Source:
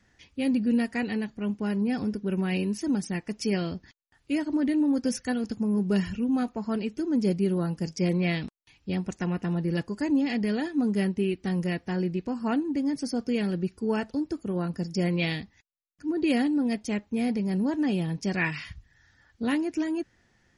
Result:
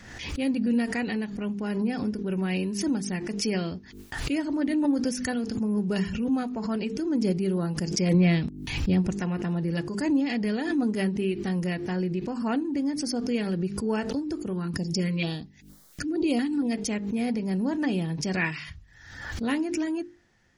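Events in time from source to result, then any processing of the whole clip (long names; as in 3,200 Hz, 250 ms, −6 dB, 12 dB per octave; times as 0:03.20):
0:08.14–0:09.14: low-shelf EQ 330 Hz +9 dB
0:14.53–0:16.71: notch on a step sequencer 4.3 Hz 610–2,600 Hz
whole clip: mains-hum notches 50/100/150/200/250/300/350/400/450 Hz; background raised ahead of every attack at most 54 dB per second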